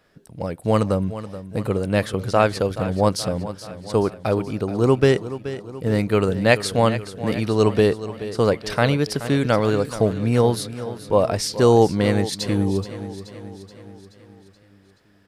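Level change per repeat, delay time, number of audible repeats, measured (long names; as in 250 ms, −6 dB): −5.0 dB, 427 ms, 5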